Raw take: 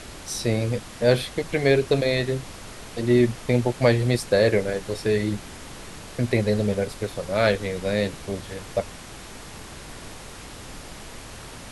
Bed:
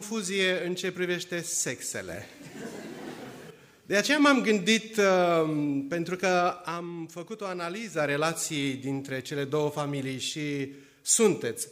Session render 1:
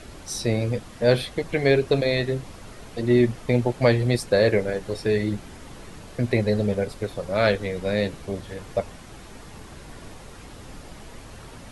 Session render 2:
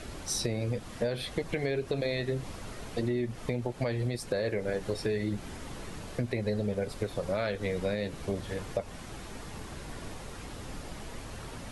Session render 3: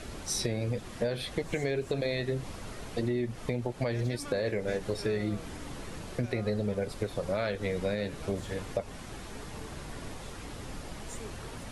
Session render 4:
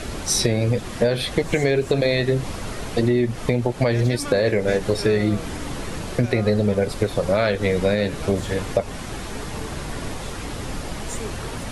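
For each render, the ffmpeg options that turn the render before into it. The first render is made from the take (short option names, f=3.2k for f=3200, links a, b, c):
-af "afftdn=nr=7:nf=-41"
-af "alimiter=limit=-15dB:level=0:latency=1:release=241,acompressor=threshold=-27dB:ratio=6"
-filter_complex "[1:a]volume=-24dB[a];[0:a][a]amix=inputs=2:normalize=0"
-af "volume=11.5dB"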